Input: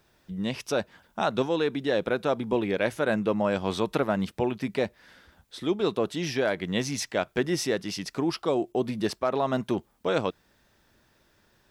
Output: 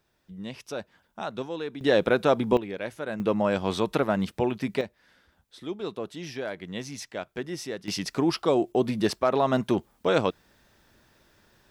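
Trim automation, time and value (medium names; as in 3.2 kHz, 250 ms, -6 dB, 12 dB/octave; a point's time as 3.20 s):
-7.5 dB
from 1.81 s +4.5 dB
from 2.57 s -7.5 dB
from 3.20 s +1 dB
from 4.81 s -7.5 dB
from 7.88 s +3 dB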